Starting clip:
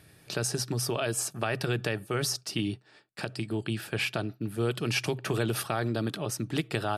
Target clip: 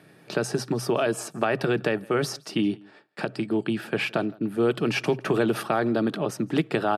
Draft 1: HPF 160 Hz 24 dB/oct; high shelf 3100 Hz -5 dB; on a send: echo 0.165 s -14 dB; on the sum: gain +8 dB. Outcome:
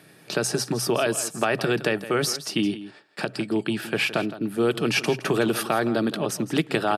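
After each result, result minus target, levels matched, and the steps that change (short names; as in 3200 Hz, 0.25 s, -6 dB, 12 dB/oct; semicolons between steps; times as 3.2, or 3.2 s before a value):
echo-to-direct +11.5 dB; 8000 Hz band +7.0 dB
change: echo 0.165 s -25.5 dB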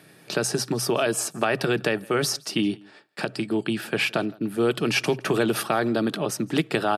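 8000 Hz band +7.0 dB
change: high shelf 3100 Hz -15 dB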